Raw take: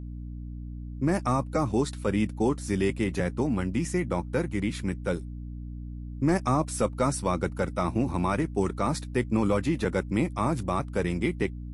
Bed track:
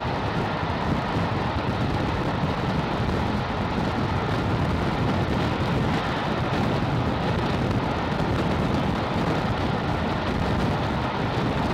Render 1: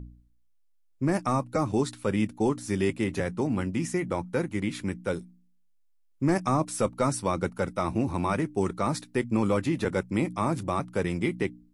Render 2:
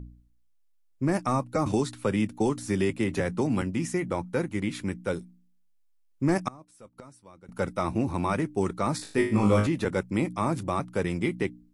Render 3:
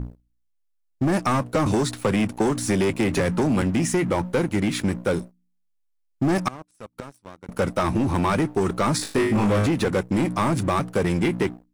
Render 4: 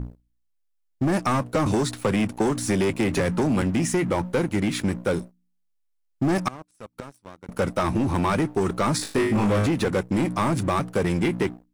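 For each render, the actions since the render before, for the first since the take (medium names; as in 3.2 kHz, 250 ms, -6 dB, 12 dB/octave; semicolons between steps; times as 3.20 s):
de-hum 60 Hz, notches 5
1.66–3.62 s: three bands compressed up and down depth 70%; 6.48–7.49 s: inverted gate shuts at -28 dBFS, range -24 dB; 8.97–9.67 s: flutter echo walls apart 3.3 m, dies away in 0.44 s
waveshaping leveller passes 3; compression, threshold -18 dBFS, peak gain reduction 4.5 dB
trim -1 dB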